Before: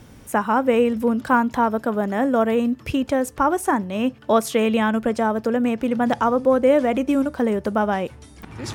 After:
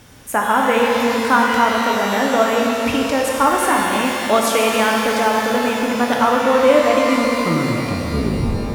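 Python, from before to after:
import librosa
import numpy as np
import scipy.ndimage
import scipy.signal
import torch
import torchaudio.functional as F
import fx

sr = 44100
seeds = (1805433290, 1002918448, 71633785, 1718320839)

y = fx.tape_stop_end(x, sr, length_s=1.77)
y = fx.tilt_shelf(y, sr, db=-4.5, hz=680.0)
y = fx.rev_shimmer(y, sr, seeds[0], rt60_s=3.3, semitones=12, shimmer_db=-8, drr_db=-1.0)
y = y * librosa.db_to_amplitude(1.0)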